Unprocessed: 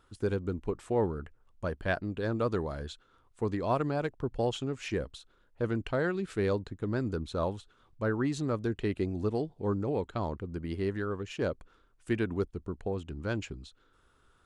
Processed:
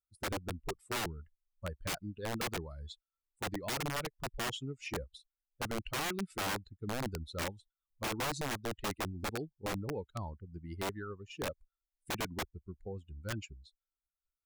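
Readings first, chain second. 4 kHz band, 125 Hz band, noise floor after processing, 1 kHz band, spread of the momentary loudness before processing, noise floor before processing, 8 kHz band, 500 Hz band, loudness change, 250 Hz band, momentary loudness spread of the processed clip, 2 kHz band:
+4.5 dB, -8.0 dB, under -85 dBFS, -2.5 dB, 8 LU, -66 dBFS, +9.0 dB, -10.0 dB, -6.0 dB, -9.5 dB, 11 LU, -1.0 dB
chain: per-bin expansion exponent 2; wrapped overs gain 30 dB

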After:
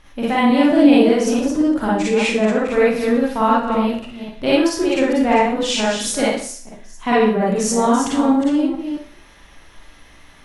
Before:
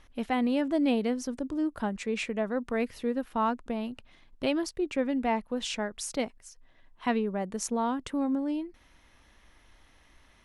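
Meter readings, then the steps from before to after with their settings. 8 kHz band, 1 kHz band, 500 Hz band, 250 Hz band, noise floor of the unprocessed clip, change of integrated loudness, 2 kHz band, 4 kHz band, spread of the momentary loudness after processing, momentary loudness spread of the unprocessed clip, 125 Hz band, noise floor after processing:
+14.0 dB, +13.5 dB, +14.5 dB, +13.5 dB, -61 dBFS, +14.0 dB, +14.0 dB, +14.0 dB, 12 LU, 7 LU, +14.0 dB, -46 dBFS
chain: reverse delay 0.223 s, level -7 dB; Schroeder reverb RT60 0.47 s, DRR -6.5 dB; gain +6 dB

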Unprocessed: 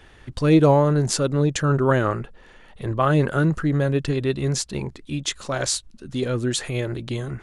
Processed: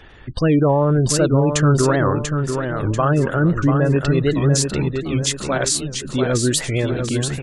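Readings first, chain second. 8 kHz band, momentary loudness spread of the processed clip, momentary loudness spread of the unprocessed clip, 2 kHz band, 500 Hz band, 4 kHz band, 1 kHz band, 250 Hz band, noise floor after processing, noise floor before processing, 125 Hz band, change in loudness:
+6.5 dB, 6 LU, 13 LU, +3.5 dB, +3.0 dB, +4.5 dB, +2.5 dB, +4.0 dB, -33 dBFS, -49 dBFS, +4.5 dB, +3.5 dB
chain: spectral gate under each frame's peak -30 dB strong; dynamic EQ 9100 Hz, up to +5 dB, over -42 dBFS, Q 0.87; limiter -13.5 dBFS, peak gain reduction 10.5 dB; feedback echo 0.69 s, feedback 41%, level -6 dB; record warp 78 rpm, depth 160 cents; gain +5 dB

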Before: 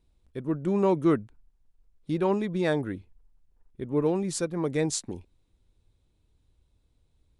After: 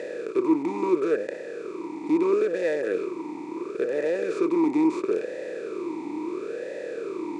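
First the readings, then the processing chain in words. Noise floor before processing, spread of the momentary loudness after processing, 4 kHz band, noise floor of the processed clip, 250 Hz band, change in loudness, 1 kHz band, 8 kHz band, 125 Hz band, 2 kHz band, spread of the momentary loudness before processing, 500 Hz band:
-70 dBFS, 12 LU, -5.5 dB, -37 dBFS, +4.0 dB, +0.5 dB, +1.5 dB, under -10 dB, -14.5 dB, +4.0 dB, 17 LU, +4.5 dB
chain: per-bin compression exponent 0.2; low shelf 440 Hz -4.5 dB; vowel sweep e-u 0.74 Hz; gain +5.5 dB

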